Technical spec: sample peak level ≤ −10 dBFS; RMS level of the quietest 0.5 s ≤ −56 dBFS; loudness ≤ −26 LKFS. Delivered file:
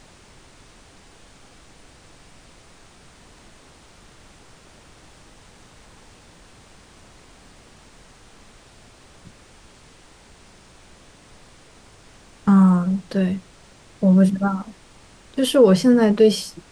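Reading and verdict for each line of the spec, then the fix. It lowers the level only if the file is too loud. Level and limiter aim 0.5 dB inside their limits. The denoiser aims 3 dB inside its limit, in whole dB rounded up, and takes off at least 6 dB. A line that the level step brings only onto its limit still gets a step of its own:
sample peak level −4.5 dBFS: out of spec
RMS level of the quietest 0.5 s −49 dBFS: out of spec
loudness −18.0 LKFS: out of spec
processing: level −8.5 dB

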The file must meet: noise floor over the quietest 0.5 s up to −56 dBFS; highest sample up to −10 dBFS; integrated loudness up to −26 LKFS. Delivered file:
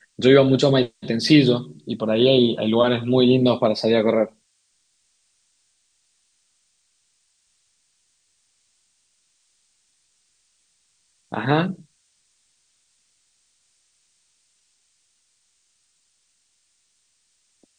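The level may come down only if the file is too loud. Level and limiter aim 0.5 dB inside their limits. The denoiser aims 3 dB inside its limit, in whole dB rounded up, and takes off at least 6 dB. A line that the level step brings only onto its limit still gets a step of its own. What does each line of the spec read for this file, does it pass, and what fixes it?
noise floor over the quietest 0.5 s −67 dBFS: in spec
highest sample −2.5 dBFS: out of spec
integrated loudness −19.0 LKFS: out of spec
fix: level −7.5 dB
brickwall limiter −10.5 dBFS

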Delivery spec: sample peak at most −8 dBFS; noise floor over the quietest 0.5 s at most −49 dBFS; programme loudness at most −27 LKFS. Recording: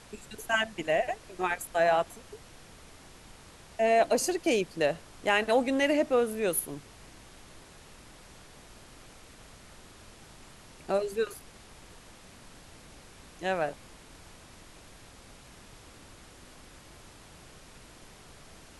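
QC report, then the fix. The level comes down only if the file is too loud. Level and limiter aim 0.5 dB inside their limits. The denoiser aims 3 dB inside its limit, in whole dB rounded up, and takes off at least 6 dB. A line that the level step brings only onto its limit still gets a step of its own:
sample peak −13.0 dBFS: in spec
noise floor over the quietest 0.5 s −52 dBFS: in spec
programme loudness −28.5 LKFS: in spec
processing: no processing needed

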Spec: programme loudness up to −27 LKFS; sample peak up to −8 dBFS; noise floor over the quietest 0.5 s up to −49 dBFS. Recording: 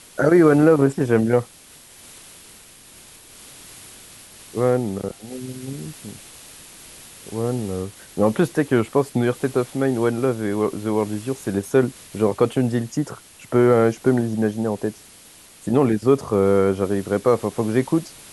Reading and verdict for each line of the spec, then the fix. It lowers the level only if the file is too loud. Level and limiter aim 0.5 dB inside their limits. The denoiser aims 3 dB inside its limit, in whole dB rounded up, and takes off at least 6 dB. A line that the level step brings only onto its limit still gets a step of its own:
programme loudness −20.5 LKFS: out of spec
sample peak −4.5 dBFS: out of spec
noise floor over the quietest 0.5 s −47 dBFS: out of spec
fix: level −7 dB

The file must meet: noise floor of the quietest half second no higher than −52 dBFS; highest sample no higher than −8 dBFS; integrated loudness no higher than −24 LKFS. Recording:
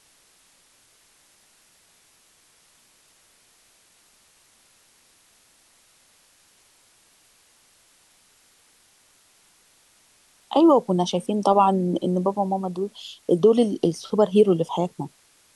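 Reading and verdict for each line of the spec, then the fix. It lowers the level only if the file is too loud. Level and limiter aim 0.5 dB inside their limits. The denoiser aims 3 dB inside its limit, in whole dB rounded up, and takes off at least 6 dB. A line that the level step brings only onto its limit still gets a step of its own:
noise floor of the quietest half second −59 dBFS: in spec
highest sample −5.5 dBFS: out of spec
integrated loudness −21.5 LKFS: out of spec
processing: level −3 dB

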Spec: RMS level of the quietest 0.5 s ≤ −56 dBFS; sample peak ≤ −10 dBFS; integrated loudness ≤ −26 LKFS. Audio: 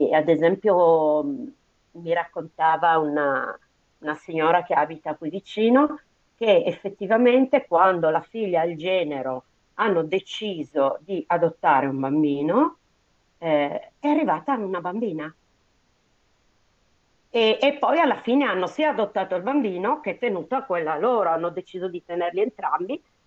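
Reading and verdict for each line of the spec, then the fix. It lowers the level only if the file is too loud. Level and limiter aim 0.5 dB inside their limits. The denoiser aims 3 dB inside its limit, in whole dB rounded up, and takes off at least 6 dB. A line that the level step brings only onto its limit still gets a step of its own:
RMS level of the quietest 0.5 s −65 dBFS: in spec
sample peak −5.0 dBFS: out of spec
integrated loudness −22.5 LKFS: out of spec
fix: level −4 dB
brickwall limiter −10.5 dBFS

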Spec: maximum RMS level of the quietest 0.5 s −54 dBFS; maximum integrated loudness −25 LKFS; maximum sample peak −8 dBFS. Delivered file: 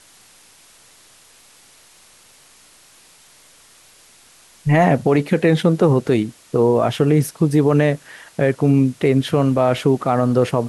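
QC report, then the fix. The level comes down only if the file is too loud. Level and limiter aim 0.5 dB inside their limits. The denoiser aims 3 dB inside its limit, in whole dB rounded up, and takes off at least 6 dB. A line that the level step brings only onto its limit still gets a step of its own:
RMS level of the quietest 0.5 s −50 dBFS: out of spec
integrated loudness −17.5 LKFS: out of spec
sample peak −5.5 dBFS: out of spec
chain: level −8 dB

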